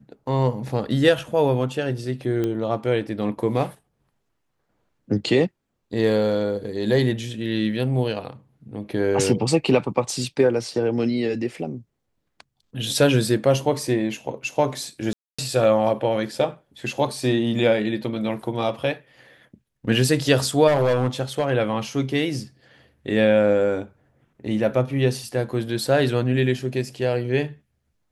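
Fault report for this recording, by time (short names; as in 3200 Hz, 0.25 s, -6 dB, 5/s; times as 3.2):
2.44 pop -14 dBFS
15.13–15.38 gap 0.255 s
20.67–21.5 clipped -15 dBFS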